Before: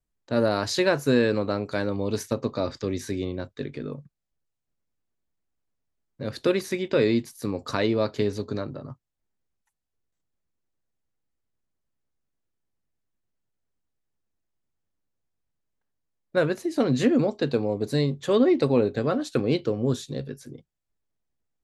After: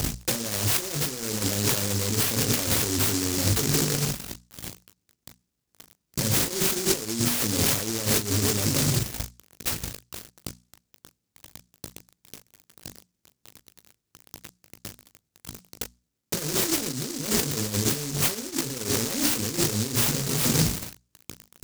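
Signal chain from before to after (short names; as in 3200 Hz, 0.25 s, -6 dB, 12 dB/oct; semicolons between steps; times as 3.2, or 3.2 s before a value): zero-crossing step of -25.5 dBFS; HPF 66 Hz; tone controls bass +1 dB, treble -7 dB; notches 60/120/180/240/300 Hz; negative-ratio compressor -31 dBFS, ratio -1; on a send: early reflections 18 ms -6.5 dB, 39 ms -10.5 dB; on the sum: noise-modulated delay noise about 6000 Hz, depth 0.38 ms; gain +3.5 dB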